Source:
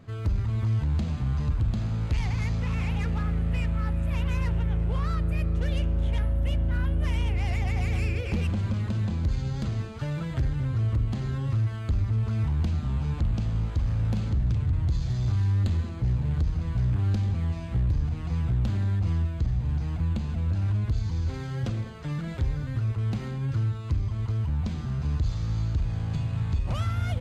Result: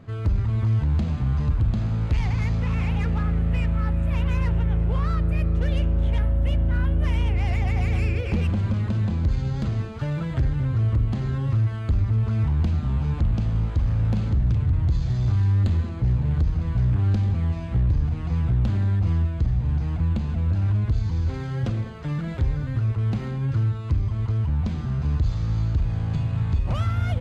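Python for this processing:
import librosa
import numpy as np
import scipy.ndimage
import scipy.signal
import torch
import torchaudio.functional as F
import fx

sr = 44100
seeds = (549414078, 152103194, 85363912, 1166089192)

y = fx.high_shelf(x, sr, hz=4000.0, db=-8.0)
y = y * 10.0 ** (4.0 / 20.0)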